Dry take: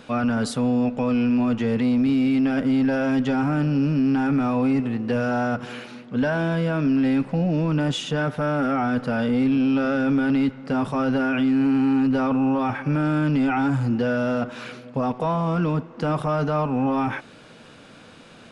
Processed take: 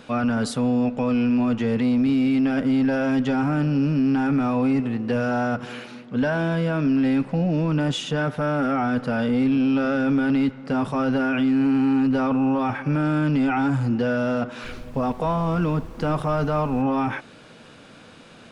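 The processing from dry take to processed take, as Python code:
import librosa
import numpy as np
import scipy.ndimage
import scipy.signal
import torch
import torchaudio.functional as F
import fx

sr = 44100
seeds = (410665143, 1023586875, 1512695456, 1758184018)

y = fx.dmg_noise_colour(x, sr, seeds[0], colour='brown', level_db=-37.0, at=(14.63, 16.81), fade=0.02)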